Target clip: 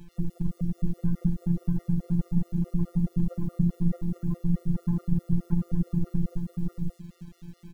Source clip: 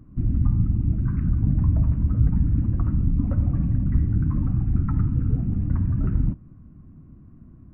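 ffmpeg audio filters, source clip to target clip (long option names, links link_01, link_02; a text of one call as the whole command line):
ffmpeg -i in.wav -af "tiltshelf=frequency=970:gain=6.5,aecho=1:1:5.4:0.36,acompressor=threshold=-17dB:ratio=5,asoftclip=type=hard:threshold=-13.5dB,aecho=1:1:106|621|629:0.119|0.708|0.531,acrusher=bits=8:mix=0:aa=0.000001,afftfilt=real='hypot(re,im)*cos(PI*b)':imag='0':win_size=1024:overlap=0.75,afftfilt=real='re*gt(sin(2*PI*4.7*pts/sr)*(1-2*mod(floor(b*sr/1024/370),2)),0)':imag='im*gt(sin(2*PI*4.7*pts/sr)*(1-2*mod(floor(b*sr/1024/370),2)),0)':win_size=1024:overlap=0.75" out.wav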